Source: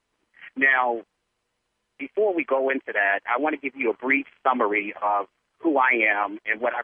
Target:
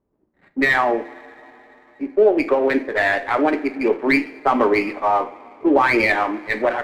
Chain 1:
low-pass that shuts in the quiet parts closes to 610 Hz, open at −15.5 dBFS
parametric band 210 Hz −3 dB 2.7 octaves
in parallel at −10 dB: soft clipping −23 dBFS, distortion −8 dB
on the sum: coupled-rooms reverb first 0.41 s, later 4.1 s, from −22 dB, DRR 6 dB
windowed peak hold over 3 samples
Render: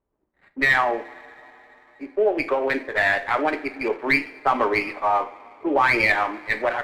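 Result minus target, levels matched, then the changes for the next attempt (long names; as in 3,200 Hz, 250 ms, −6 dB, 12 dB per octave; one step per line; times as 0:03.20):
250 Hz band −5.5 dB
change: parametric band 210 Hz +7.5 dB 2.7 octaves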